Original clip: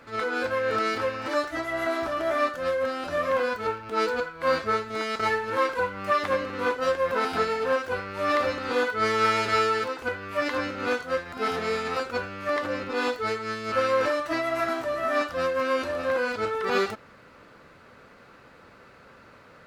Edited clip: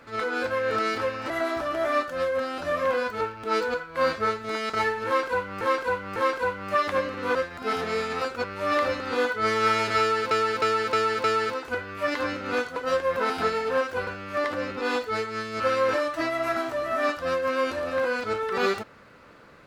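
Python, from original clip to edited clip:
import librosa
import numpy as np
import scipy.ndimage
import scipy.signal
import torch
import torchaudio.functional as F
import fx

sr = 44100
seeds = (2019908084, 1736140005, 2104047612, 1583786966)

y = fx.edit(x, sr, fx.cut(start_s=1.3, length_s=0.46),
    fx.repeat(start_s=5.52, length_s=0.55, count=3),
    fx.swap(start_s=6.71, length_s=1.31, other_s=11.1, other_length_s=1.09),
    fx.repeat(start_s=9.58, length_s=0.31, count=5), tone=tone)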